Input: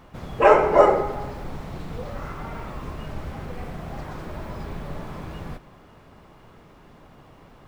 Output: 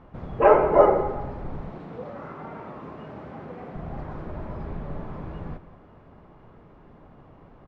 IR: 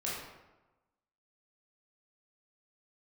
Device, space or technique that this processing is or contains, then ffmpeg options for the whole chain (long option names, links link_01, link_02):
through cloth: -filter_complex "[0:a]asettb=1/sr,asplit=3[link_01][link_02][link_03];[link_01]atrim=end=1.704[link_04];[link_02]atrim=start=1.7:end=3.75,asetpts=PTS-STARTPTS,afade=type=in:duration=0.004:curve=qsin,afade=type=out:start_time=2.046:duration=0.004:curve=qsin,highpass=190[link_05];[link_03]atrim=start=3.746[link_06];[link_04][link_05]acrossfade=duration=0.004:curve1=hsin:curve2=qsin[link_07];[link_07][link_06]acrossfade=duration=0.004:curve1=qsin:curve2=hsin,lowpass=6800,highshelf=frequency=2600:gain=-17.5,highshelf=frequency=6000:gain=-6,asplit=2[link_08][link_09];[link_09]adelay=174.9,volume=-16dB,highshelf=frequency=4000:gain=-3.94[link_10];[link_08][link_10]amix=inputs=2:normalize=0"